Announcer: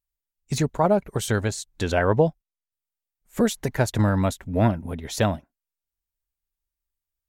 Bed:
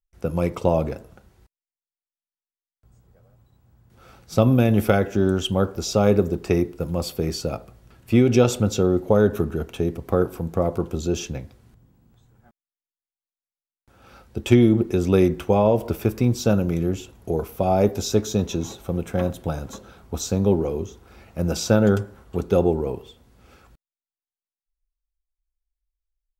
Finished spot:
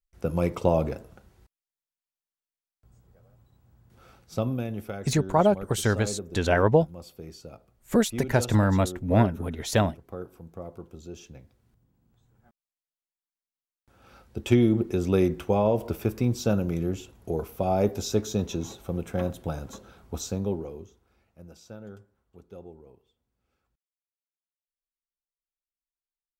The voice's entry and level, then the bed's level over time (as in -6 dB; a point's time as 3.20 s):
4.55 s, -0.5 dB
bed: 3.92 s -2.5 dB
4.88 s -17.5 dB
11.17 s -17.5 dB
12.57 s -5 dB
20.16 s -5 dB
21.58 s -26 dB